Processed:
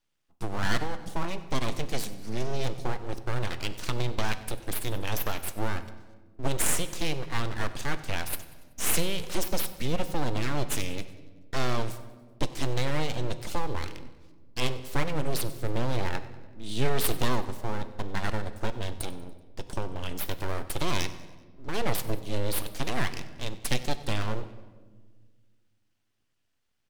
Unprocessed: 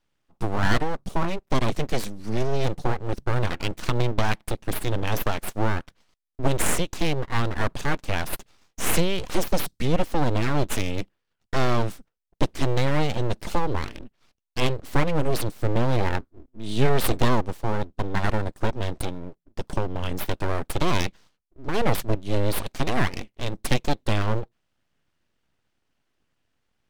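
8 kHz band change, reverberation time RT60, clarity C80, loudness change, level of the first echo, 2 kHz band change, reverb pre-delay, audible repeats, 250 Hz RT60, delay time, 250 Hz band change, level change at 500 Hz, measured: 0.0 dB, 1.5 s, 13.5 dB, -5.5 dB, -19.5 dB, -4.5 dB, 6 ms, 4, 2.2 s, 95 ms, -7.0 dB, -6.5 dB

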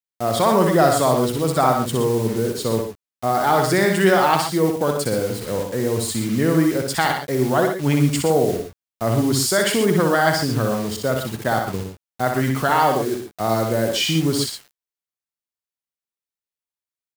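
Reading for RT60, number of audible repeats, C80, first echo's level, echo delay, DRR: no reverb, 2, no reverb, -5.0 dB, 62 ms, no reverb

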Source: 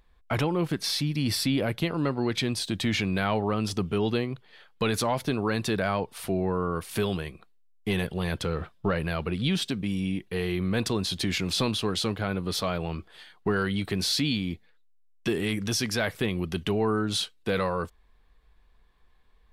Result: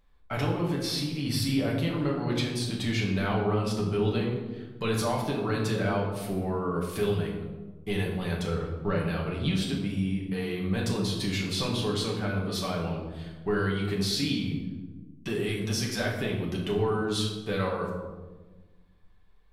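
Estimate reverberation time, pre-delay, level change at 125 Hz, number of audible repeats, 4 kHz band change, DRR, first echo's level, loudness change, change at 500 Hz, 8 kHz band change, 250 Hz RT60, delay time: 1.3 s, 5 ms, +1.0 dB, no echo, -3.0 dB, -3.0 dB, no echo, -1.0 dB, -0.5 dB, -3.5 dB, 1.9 s, no echo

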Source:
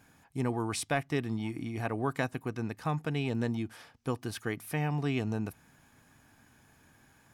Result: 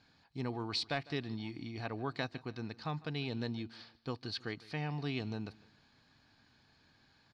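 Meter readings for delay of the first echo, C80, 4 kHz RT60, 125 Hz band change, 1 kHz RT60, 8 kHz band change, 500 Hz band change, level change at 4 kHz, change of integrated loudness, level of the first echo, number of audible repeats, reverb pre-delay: 153 ms, no reverb, no reverb, -7.0 dB, no reverb, -15.5 dB, -7.0 dB, +3.0 dB, -6.0 dB, -21.0 dB, 2, no reverb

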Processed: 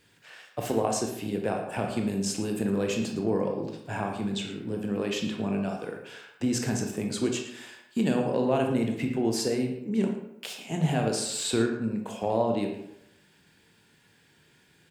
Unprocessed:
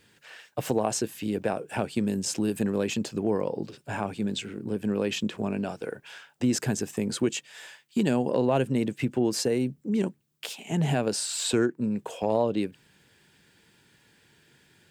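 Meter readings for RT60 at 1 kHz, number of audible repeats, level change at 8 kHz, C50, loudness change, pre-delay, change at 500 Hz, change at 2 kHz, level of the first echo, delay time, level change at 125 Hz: 0.85 s, 1, -1.5 dB, 5.0 dB, -0.5 dB, 20 ms, -0.5 dB, -0.5 dB, -13.0 dB, 112 ms, -0.5 dB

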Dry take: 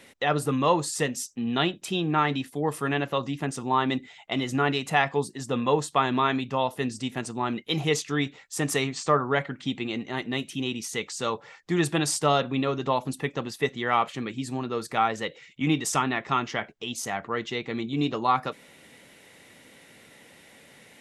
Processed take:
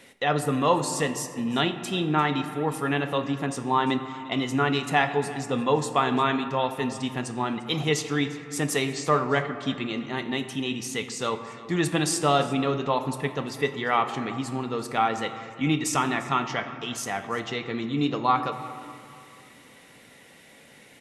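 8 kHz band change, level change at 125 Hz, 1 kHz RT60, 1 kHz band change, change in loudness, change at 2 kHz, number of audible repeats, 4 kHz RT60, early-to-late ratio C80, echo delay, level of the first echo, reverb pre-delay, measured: +0.5 dB, +1.0 dB, 2.7 s, +1.0 dB, +1.0 dB, +0.5 dB, 1, 1.2 s, 10.5 dB, 348 ms, -19.5 dB, 4 ms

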